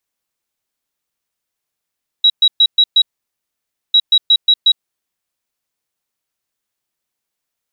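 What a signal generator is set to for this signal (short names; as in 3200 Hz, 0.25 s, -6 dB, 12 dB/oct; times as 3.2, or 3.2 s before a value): beep pattern sine 3870 Hz, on 0.06 s, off 0.12 s, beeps 5, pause 0.92 s, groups 2, -6 dBFS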